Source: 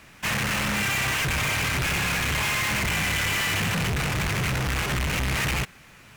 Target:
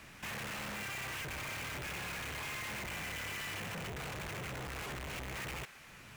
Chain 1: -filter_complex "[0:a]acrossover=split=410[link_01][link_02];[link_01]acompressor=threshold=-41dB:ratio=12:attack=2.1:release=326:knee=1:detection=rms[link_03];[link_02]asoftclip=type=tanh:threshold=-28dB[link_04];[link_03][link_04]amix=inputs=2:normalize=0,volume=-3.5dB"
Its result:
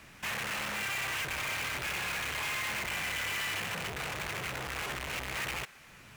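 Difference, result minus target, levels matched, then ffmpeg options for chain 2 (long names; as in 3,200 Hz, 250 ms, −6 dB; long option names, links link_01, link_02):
soft clipping: distortion −6 dB
-filter_complex "[0:a]acrossover=split=410[link_01][link_02];[link_01]acompressor=threshold=-41dB:ratio=12:attack=2.1:release=326:knee=1:detection=rms[link_03];[link_02]asoftclip=type=tanh:threshold=-37dB[link_04];[link_03][link_04]amix=inputs=2:normalize=0,volume=-3.5dB"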